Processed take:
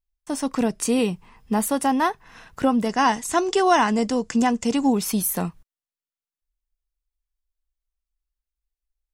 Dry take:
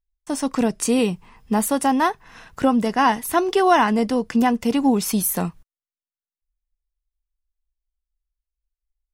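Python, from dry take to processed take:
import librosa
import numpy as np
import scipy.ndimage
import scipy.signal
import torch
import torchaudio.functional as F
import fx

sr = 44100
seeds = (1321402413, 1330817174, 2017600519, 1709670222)

y = fx.lowpass_res(x, sr, hz=7300.0, q=4.5, at=(2.89, 4.93))
y = y * librosa.db_to_amplitude(-2.0)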